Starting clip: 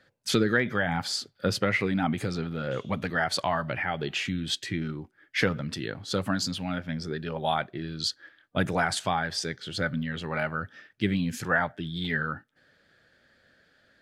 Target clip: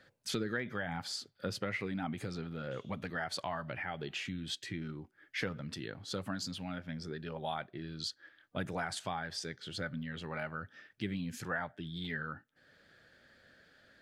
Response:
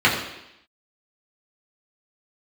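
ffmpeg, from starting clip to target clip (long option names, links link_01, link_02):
-af "acompressor=threshold=-54dB:ratio=1.5"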